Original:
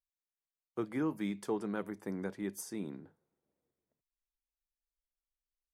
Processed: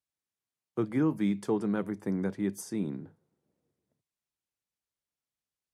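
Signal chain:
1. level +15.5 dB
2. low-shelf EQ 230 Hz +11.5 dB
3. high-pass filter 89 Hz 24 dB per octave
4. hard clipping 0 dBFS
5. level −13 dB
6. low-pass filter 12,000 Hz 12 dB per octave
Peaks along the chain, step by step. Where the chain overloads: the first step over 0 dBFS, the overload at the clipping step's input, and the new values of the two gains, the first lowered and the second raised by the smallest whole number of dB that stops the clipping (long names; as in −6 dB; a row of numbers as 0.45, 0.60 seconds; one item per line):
−7.5, −4.0, −4.0, −4.0, −17.0, −17.0 dBFS
no step passes full scale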